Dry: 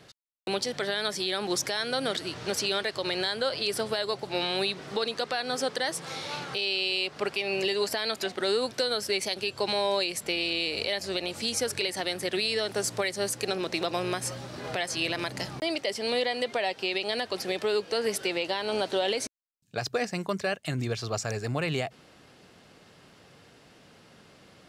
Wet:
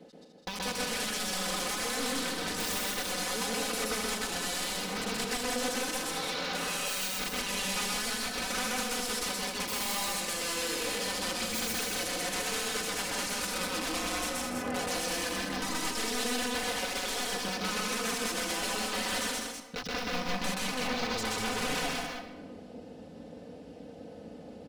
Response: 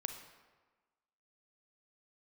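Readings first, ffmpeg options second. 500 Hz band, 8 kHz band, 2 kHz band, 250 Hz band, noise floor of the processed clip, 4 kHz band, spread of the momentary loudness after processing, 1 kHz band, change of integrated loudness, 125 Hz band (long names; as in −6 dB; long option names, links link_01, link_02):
−8.0 dB, +4.0 dB, −1.0 dB, −1.5 dB, −48 dBFS, −3.0 dB, 8 LU, −0.5 dB, −2.5 dB, −6.5 dB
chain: -filter_complex "[0:a]aeval=exprs='(mod(22.4*val(0)+1,2)-1)/22.4':channel_layout=same,aecho=1:1:4:1,acompressor=threshold=-42dB:ratio=2.5,afwtdn=0.00355,aecho=1:1:163.3|204.1:0.355|0.562,asplit=2[link_01][link_02];[1:a]atrim=start_sample=2205,adelay=127[link_03];[link_02][link_03]afir=irnorm=-1:irlink=0,volume=1.5dB[link_04];[link_01][link_04]amix=inputs=2:normalize=0,volume=3.5dB"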